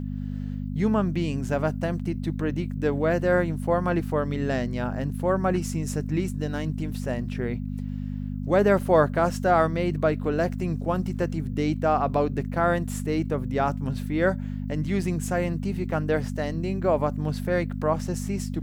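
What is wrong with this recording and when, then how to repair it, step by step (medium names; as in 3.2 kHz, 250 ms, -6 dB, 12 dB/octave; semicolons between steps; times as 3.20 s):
hum 50 Hz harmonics 5 -31 dBFS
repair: de-hum 50 Hz, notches 5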